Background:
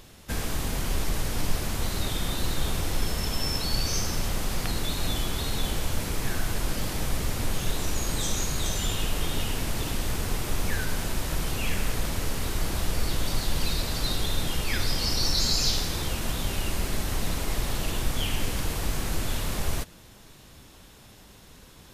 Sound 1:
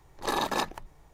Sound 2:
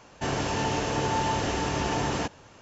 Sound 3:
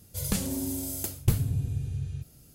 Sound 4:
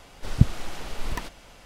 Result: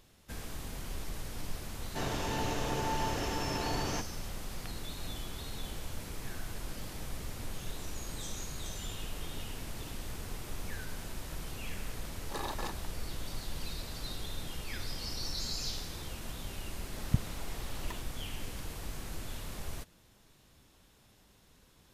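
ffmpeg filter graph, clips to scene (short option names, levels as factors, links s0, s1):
-filter_complex "[0:a]volume=0.237[s0];[1:a]alimiter=limit=0.15:level=0:latency=1:release=245[s1];[2:a]atrim=end=2.61,asetpts=PTS-STARTPTS,volume=0.422,afade=t=in:d=0.004:c=hsin,afade=t=out:st=2.606:d=0.004:c=hsin,adelay=1740[s2];[s1]atrim=end=1.13,asetpts=PTS-STARTPTS,volume=0.316,afade=t=in:d=0.004:c=hsin,afade=t=out:st=1.126:d=0.004:c=hsin,adelay=12070[s3];[4:a]atrim=end=1.65,asetpts=PTS-STARTPTS,volume=0.266,afade=t=in:d=0.004:c=hsin,afade=t=out:st=1.646:d=0.004:c=hsin,adelay=16730[s4];[s0][s2][s3][s4]amix=inputs=4:normalize=0"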